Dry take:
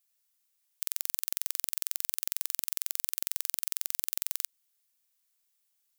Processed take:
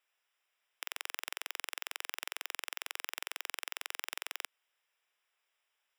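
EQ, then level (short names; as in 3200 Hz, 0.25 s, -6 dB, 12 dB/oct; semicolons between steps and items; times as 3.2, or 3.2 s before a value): polynomial smoothing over 25 samples; HPF 400 Hz 24 dB/oct; +9.5 dB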